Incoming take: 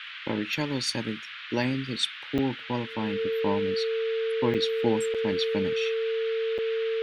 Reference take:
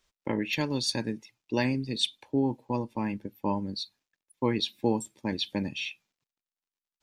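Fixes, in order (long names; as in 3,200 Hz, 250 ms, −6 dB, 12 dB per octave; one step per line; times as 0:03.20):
notch filter 450 Hz, Q 30
repair the gap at 0:02.38/0:04.54/0:05.14/0:06.58, 6.8 ms
noise reduction from a noise print 30 dB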